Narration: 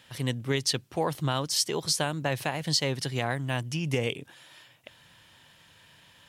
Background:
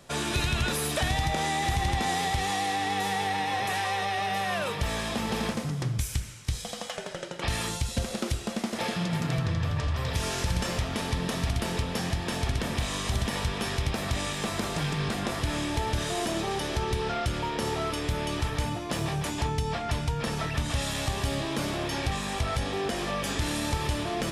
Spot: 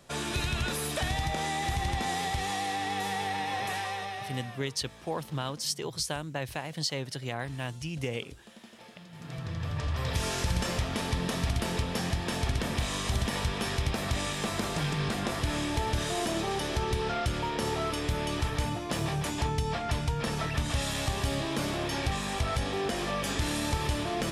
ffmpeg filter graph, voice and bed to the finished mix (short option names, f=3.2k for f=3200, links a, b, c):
-filter_complex "[0:a]adelay=4100,volume=-5.5dB[a];[1:a]volume=16.5dB,afade=t=out:st=3.68:d=0.94:silence=0.133352,afade=t=in:st=9.12:d=0.96:silence=0.1[b];[a][b]amix=inputs=2:normalize=0"